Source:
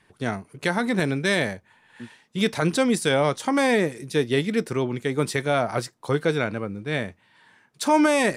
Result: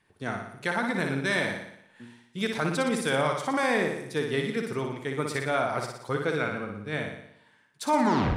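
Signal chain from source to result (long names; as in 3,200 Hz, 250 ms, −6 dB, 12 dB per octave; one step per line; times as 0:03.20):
turntable brake at the end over 0.43 s
dynamic equaliser 1,300 Hz, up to +6 dB, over −36 dBFS, Q 0.95
flutter between parallel walls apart 10.1 metres, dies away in 0.73 s
level −8 dB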